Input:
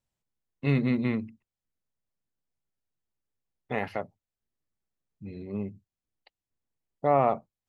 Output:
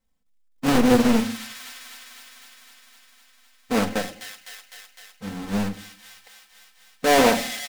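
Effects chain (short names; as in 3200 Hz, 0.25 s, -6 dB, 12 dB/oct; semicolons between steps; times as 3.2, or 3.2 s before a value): half-waves squared off; comb 3.9 ms, depth 79%; thin delay 0.254 s, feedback 73%, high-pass 2200 Hz, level -6 dB; reverb RT60 0.60 s, pre-delay 4 ms, DRR 6.5 dB; Doppler distortion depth 0.85 ms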